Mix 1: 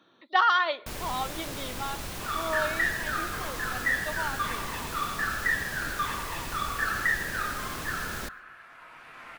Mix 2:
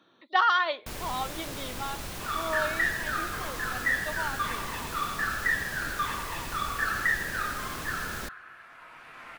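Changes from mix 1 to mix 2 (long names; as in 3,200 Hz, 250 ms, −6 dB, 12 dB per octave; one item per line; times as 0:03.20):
speech: send off
first sound: send off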